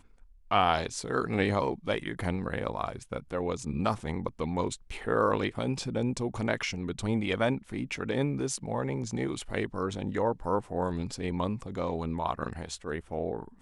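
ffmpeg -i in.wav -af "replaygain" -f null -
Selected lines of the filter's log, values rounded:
track_gain = +11.5 dB
track_peak = 0.195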